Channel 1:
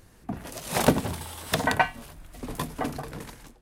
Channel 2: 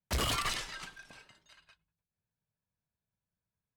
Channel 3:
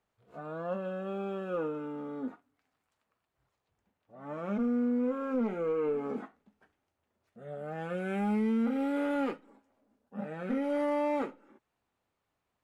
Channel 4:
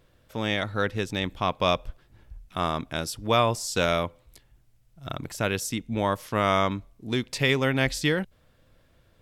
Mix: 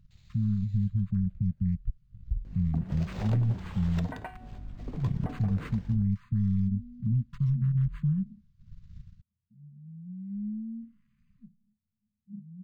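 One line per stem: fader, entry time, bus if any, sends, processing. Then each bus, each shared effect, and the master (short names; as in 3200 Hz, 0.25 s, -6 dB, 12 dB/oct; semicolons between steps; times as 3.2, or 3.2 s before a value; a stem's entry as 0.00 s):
-1.0 dB, 2.45 s, bus B, no send, hum 50 Hz, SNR 14 dB
-5.0 dB, 0.00 s, bus B, no send, minimum comb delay 0.47 ms; wrapped overs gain 40 dB; LFO band-pass square 0.45 Hz 580–3700 Hz
-9.5 dB, 2.15 s, bus A, no send, dry
-6.0 dB, 0.00 s, bus A, no send, high shelf 6300 Hz +4.5 dB; transient shaper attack +6 dB, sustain -10 dB; AGC gain up to 14 dB
bus A: 0.0 dB, brick-wall FIR band-stop 220–12000 Hz; limiter -30 dBFS, peak gain reduction 11.5 dB
bus B: 0.0 dB, resonator 370 Hz, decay 0.71 s, mix 60%; compressor 3:1, threshold -44 dBFS, peak gain reduction 16 dB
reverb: off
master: low shelf 460 Hz +10.5 dB; decimation joined by straight lines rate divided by 4×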